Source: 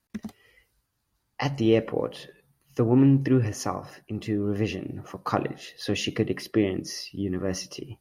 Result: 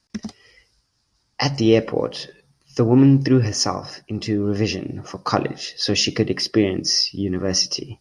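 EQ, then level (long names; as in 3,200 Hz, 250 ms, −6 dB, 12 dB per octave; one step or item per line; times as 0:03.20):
low-pass filter 9,200 Hz 24 dB per octave
parametric band 5,200 Hz +14.5 dB 0.47 octaves
+5.5 dB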